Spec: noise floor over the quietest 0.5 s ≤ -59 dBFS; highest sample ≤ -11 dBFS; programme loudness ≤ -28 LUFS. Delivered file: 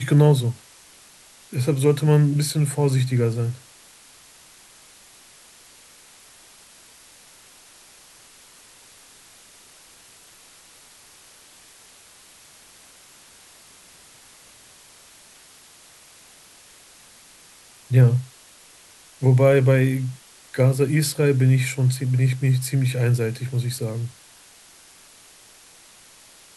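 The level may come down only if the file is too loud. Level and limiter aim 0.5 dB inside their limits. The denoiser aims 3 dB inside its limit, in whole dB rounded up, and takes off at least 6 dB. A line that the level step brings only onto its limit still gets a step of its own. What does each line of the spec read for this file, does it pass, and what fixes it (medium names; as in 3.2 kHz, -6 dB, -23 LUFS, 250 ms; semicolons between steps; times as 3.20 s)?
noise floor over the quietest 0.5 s -50 dBFS: fail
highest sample -4.5 dBFS: fail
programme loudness -20.5 LUFS: fail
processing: noise reduction 6 dB, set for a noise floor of -50 dBFS; trim -8 dB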